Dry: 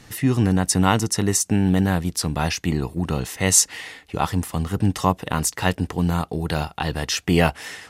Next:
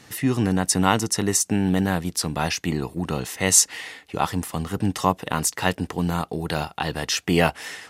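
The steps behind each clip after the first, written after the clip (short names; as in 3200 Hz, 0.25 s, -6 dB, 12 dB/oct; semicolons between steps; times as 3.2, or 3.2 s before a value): HPF 170 Hz 6 dB/oct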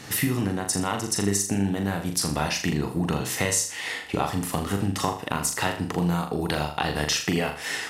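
compressor 12:1, threshold -29 dBFS, peak gain reduction 18.5 dB; on a send: flutter echo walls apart 6.9 m, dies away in 0.43 s; on the sum: gain +7 dB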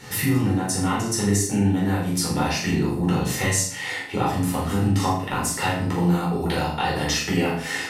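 shoebox room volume 380 m³, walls furnished, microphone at 4.4 m; gain -5.5 dB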